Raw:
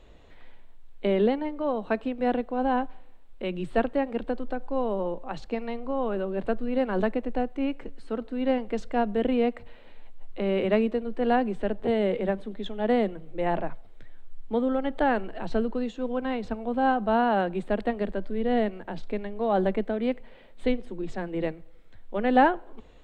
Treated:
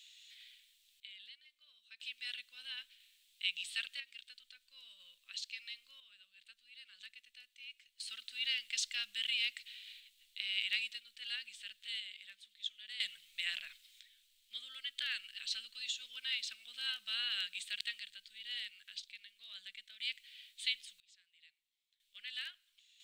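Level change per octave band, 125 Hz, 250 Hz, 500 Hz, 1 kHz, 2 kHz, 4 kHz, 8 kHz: below −40 dB, below −40 dB, below −40 dB, −38.5 dB, −6.5 dB, +8.0 dB, can't be measured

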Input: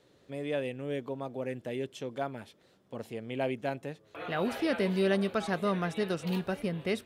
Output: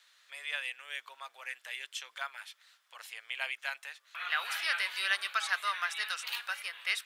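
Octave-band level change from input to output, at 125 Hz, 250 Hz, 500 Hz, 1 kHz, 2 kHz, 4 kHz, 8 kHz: below −40 dB, below −40 dB, −22.5 dB, −0.5 dB, +7.0 dB, +7.5 dB, +7.5 dB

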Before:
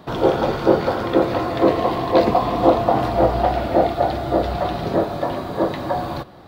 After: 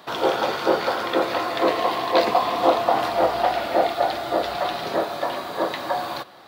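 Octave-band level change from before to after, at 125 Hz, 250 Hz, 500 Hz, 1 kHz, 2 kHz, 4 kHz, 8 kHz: −16.0 dB, −8.5 dB, −4.0 dB, −1.0 dB, +3.0 dB, +4.5 dB, can't be measured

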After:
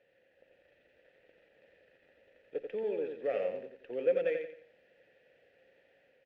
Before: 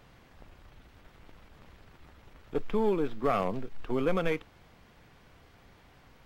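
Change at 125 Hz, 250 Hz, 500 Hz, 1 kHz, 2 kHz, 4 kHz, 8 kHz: below −20 dB, −14.5 dB, −1.5 dB, −16.0 dB, −6.0 dB, below −10 dB, can't be measured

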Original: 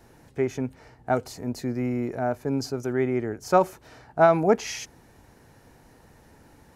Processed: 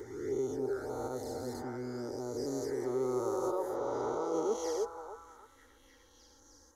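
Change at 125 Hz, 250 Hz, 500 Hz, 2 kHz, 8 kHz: −15.0, −10.0, −8.0, −17.0, −6.5 decibels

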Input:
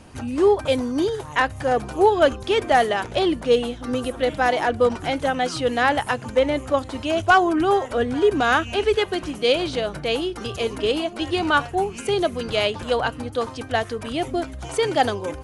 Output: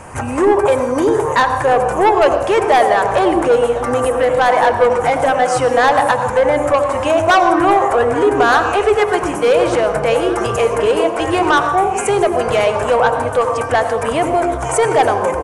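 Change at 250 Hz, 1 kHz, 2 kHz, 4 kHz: +4.5, +9.5, +6.0, +0.5 decibels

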